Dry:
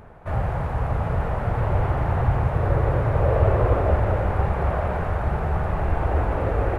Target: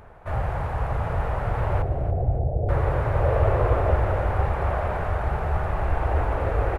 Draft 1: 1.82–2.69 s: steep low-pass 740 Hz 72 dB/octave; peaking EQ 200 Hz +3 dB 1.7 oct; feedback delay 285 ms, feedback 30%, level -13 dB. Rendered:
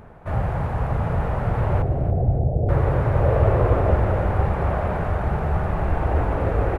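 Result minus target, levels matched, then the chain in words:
250 Hz band +4.5 dB
1.82–2.69 s: steep low-pass 740 Hz 72 dB/octave; peaking EQ 200 Hz -6.5 dB 1.7 oct; feedback delay 285 ms, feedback 30%, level -13 dB

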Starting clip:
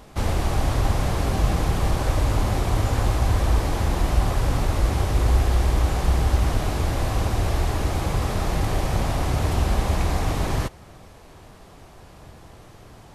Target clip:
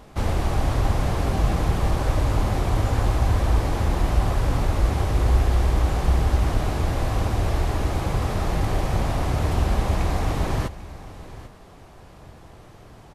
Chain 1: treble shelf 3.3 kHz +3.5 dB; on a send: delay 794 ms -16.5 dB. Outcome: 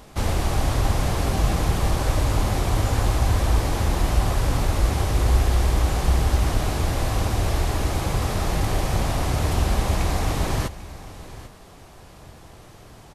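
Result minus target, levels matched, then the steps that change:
8 kHz band +6.5 dB
change: treble shelf 3.3 kHz -4.5 dB

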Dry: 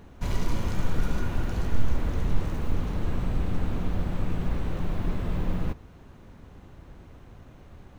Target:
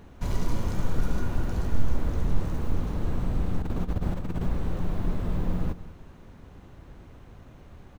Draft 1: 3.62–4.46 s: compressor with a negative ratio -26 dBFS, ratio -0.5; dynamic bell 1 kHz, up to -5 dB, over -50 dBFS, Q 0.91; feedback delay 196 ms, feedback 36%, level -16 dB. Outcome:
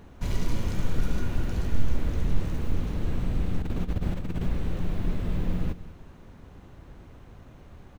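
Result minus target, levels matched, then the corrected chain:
1 kHz band -3.0 dB
3.62–4.46 s: compressor with a negative ratio -26 dBFS, ratio -0.5; dynamic bell 2.5 kHz, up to -5 dB, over -50 dBFS, Q 0.91; feedback delay 196 ms, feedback 36%, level -16 dB

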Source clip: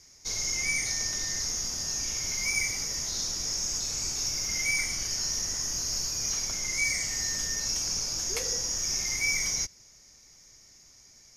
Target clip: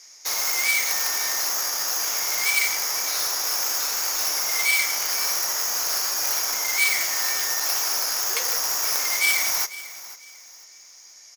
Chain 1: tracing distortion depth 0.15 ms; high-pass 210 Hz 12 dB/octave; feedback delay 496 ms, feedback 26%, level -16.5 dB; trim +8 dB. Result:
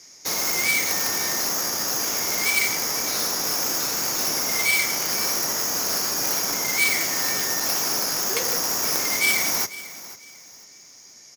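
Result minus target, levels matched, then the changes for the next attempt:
250 Hz band +15.0 dB
change: high-pass 730 Hz 12 dB/octave

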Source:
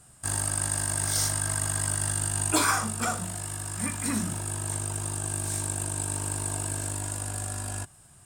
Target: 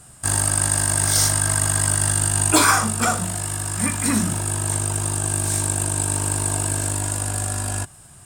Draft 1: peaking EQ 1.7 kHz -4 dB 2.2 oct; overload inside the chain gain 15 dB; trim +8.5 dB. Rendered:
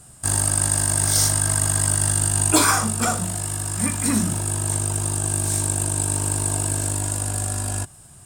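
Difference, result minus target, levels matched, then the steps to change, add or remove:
2 kHz band -3.0 dB
remove: peaking EQ 1.7 kHz -4 dB 2.2 oct

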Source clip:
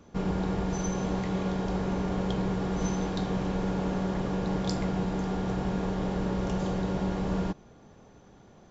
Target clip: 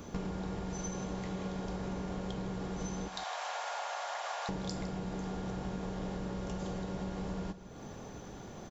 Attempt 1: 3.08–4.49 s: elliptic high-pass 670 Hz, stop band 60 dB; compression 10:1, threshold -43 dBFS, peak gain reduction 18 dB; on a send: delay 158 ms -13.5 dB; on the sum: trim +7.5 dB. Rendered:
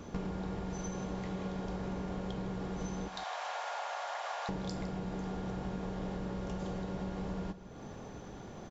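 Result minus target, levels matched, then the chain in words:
8 kHz band -4.5 dB
3.08–4.49 s: elliptic high-pass 670 Hz, stop band 60 dB; compression 10:1, threshold -43 dBFS, peak gain reduction 18 dB; treble shelf 6.9 kHz +10.5 dB; on a send: delay 158 ms -13.5 dB; on the sum: trim +7.5 dB

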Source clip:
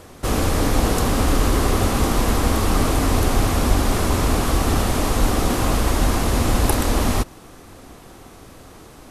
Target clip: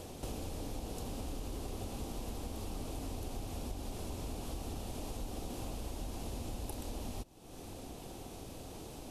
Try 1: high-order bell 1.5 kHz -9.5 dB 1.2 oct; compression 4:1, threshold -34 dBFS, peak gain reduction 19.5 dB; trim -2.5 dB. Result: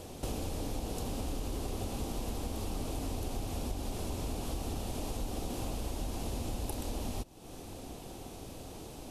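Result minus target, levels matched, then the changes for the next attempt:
compression: peak gain reduction -4.5 dB
change: compression 4:1, threshold -40 dBFS, peak gain reduction 24 dB

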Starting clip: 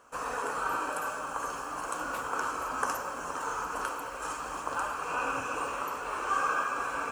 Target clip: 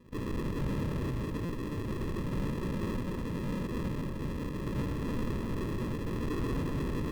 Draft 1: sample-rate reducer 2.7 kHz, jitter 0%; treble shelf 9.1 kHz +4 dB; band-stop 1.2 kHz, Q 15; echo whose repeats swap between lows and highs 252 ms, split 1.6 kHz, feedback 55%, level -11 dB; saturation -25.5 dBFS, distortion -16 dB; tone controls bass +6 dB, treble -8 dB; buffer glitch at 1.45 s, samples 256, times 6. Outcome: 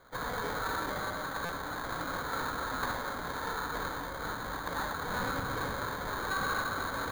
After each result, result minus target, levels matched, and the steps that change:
sample-rate reducer: distortion -22 dB; saturation: distortion -6 dB
change: sample-rate reducer 740 Hz, jitter 0%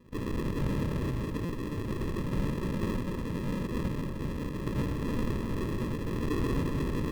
saturation: distortion -5 dB
change: saturation -31.5 dBFS, distortion -10 dB

